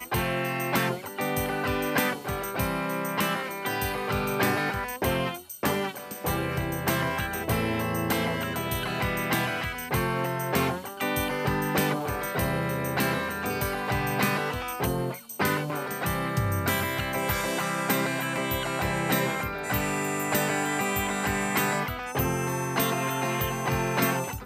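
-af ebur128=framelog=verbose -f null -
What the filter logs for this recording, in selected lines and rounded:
Integrated loudness:
  I:         -27.5 LUFS
  Threshold: -37.5 LUFS
Loudness range:
  LRA:         1.5 LU
  Threshold: -47.6 LUFS
  LRA low:   -28.2 LUFS
  LRA high:  -26.8 LUFS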